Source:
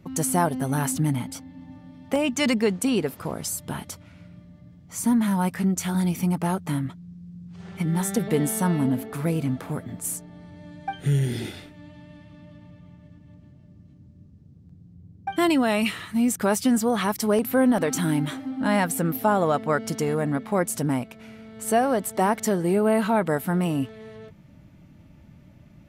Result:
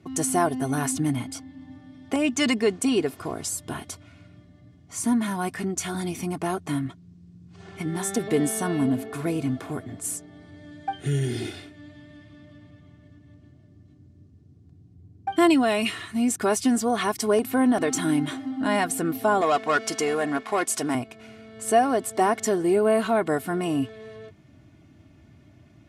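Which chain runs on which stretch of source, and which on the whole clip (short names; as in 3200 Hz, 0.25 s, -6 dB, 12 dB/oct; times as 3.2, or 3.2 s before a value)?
19.41–20.95 HPF 880 Hz 6 dB/oct + high shelf 7100 Hz -6.5 dB + sample leveller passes 2
whole clip: Chebyshev band-pass 100–9000 Hz, order 2; comb 2.8 ms, depth 62%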